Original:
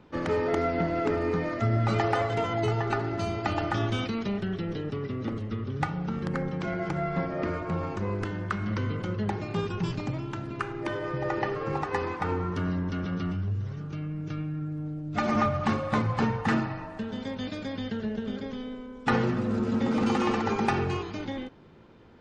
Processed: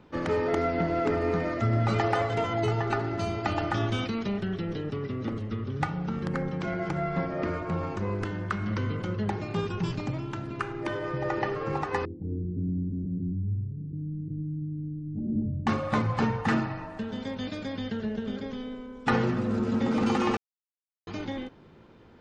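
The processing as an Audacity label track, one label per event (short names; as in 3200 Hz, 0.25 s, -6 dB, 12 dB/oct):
0.560000	1.190000	echo throw 0.33 s, feedback 70%, level -12.5 dB
12.050000	15.670000	inverse Chebyshev low-pass stop band from 1100 Hz, stop band 60 dB
20.370000	21.070000	mute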